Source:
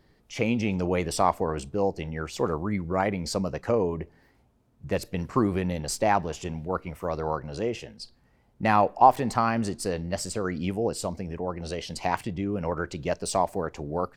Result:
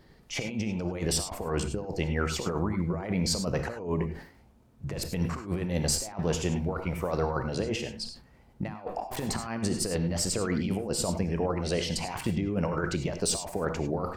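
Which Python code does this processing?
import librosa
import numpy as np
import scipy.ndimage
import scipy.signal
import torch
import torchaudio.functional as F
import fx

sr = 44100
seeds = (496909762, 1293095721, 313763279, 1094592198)

y = fx.over_compress(x, sr, threshold_db=-30.0, ratio=-0.5)
y = fx.rev_gated(y, sr, seeds[0], gate_ms=120, shape='rising', drr_db=8.0)
y = fx.sustainer(y, sr, db_per_s=110.0)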